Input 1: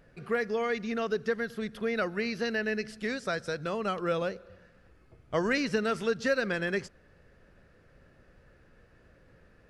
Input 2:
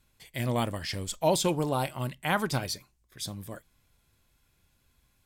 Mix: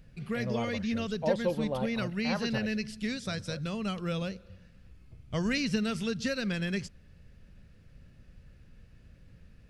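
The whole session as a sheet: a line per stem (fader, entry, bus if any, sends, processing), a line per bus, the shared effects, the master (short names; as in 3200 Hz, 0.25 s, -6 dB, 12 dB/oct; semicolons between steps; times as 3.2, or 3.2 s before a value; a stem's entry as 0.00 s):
+2.5 dB, 0.00 s, no send, band shelf 760 Hz -10.5 dB 2.9 oct
-10.0 dB, 0.00 s, no send, LPF 3100 Hz 12 dB/oct; bell 530 Hz +12 dB 0.32 oct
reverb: off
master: low shelf 160 Hz +6 dB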